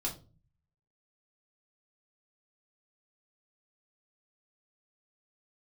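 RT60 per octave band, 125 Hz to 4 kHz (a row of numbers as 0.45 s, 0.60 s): 0.85 s, 0.65 s, 0.40 s, 0.30 s, 0.25 s, 0.25 s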